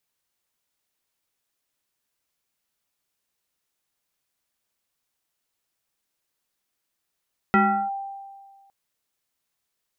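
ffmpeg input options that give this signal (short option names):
-f lavfi -i "aevalsrc='0.224*pow(10,-3*t/1.67)*sin(2*PI*788*t+1.8*clip(1-t/0.36,0,1)*sin(2*PI*0.74*788*t))':d=1.16:s=44100"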